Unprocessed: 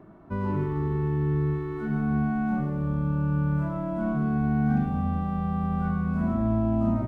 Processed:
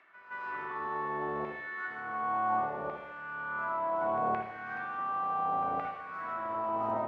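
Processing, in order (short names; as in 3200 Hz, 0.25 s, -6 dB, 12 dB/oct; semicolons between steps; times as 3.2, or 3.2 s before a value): octaver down 1 oct, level +2 dB; reverse; upward compressor, threshold -32 dBFS; reverse; LFO high-pass saw down 0.69 Hz 660–2200 Hz; air absorption 110 m; pre-echo 0.17 s -12.5 dB; on a send at -3 dB: reverb RT60 0.85 s, pre-delay 53 ms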